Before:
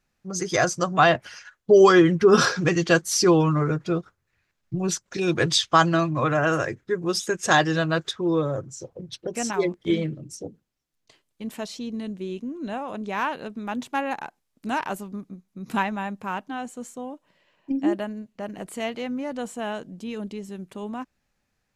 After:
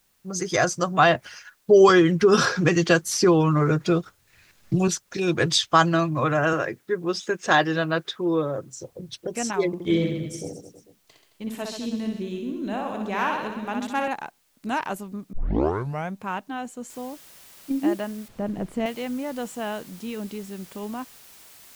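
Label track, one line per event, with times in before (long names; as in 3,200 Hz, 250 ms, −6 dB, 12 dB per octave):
1.890000	4.880000	multiband upward and downward compressor depth 70%
6.530000	8.730000	band-pass filter 170–4,400 Hz
9.670000	14.080000	reverse bouncing-ball delay first gap 60 ms, each gap 1.2×, echoes 5
15.330000	15.330000	tape start 0.83 s
16.900000	16.900000	noise floor change −67 dB −49 dB
18.280000	18.860000	spectral tilt −3.5 dB per octave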